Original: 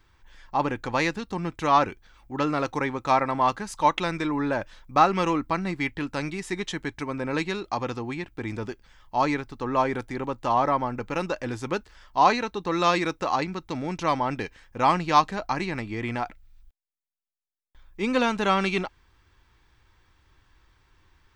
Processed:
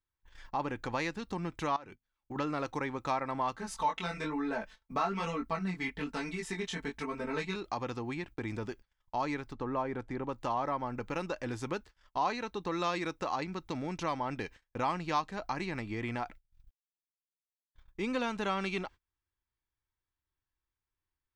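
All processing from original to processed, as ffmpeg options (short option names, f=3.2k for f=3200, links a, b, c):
-filter_complex "[0:a]asettb=1/sr,asplit=3[a][b][c];[a]atrim=end=1.764[d];[b]atrim=start=1.76:end=2.36,asetpts=PTS-STARTPTS,afade=t=in:d=0.004:c=qsin,afade=t=out:st=0.596:d=0.004:c=qsin,bandreject=f=50:t=h:w=6,bandreject=f=100:t=h:w=6,bandreject=f=150:t=h:w=6,bandreject=f=200:t=h:w=6,bandreject=f=250:t=h:w=6,acompressor=threshold=-36dB:ratio=4:attack=3.2:release=140:knee=1:detection=peak[e];[c]atrim=start=2.356[f];[d][e]acrossfade=d=0.004:c1=hsin:c2=qsin[g];[g][f]acrossfade=d=0.004:c1=qsin:c2=hsin,asettb=1/sr,asplit=3[h][i][j];[h]atrim=end=3.574[k];[i]atrim=start=3.57:end=7.56,asetpts=PTS-STARTPTS,afade=t=in:d=0.004:c=qsin,afade=t=out:st=3.986:d=0.004:c=qsin,aecho=1:1:4.5:0.96,atrim=end_sample=175959,flanger=delay=17:depth=6:speed=1.1[l];[j]atrim=start=7.556[m];[k][l]acrossfade=d=0.004:c1=hsin:c2=qsin[n];[n][m]acrossfade=d=0.004:c1=qsin:c2=hsin,asettb=1/sr,asplit=3[o][p][q];[o]atrim=end=9.534[r];[p]atrim=start=9.53:end=10.29,asetpts=PTS-STARTPTS,afade=t=in:d=0.004:c=qsin,afade=t=out:st=0.756:d=0.004:c=qsin,lowpass=9.6k,highshelf=f=2.7k:g=-12[s];[q]atrim=start=10.286[t];[r][s]acrossfade=d=0.004:c1=hsin:c2=qsin[u];[u][t]acrossfade=d=0.004:c1=qsin:c2=hsin,acompressor=threshold=-38dB:ratio=2,agate=range=-31dB:threshold=-48dB:ratio=16:detection=peak"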